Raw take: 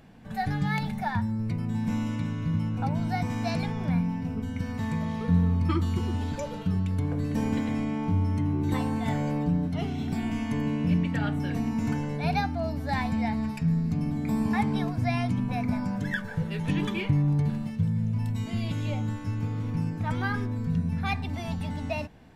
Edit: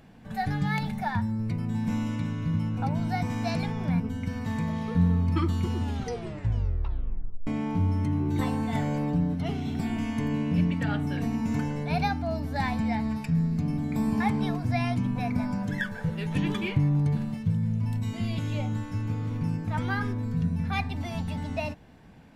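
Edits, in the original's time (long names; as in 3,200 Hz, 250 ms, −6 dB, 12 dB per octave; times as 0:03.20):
0:04.00–0:04.33: remove
0:06.16: tape stop 1.64 s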